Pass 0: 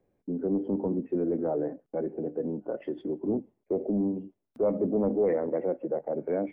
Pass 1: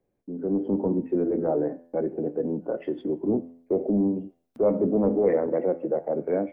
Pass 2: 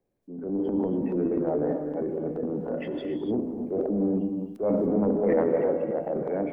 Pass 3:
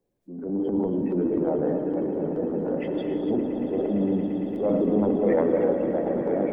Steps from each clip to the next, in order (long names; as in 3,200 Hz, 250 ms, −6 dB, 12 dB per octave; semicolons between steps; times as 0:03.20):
hum removal 84.5 Hz, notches 38; automatic gain control gain up to 8 dB; level −3.5 dB
transient designer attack −5 dB, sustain +10 dB; reverb whose tail is shaped and stops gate 310 ms rising, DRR 5 dB; level −3 dB
spectral magnitudes quantised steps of 15 dB; echo that builds up and dies away 114 ms, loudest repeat 8, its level −15 dB; level +1.5 dB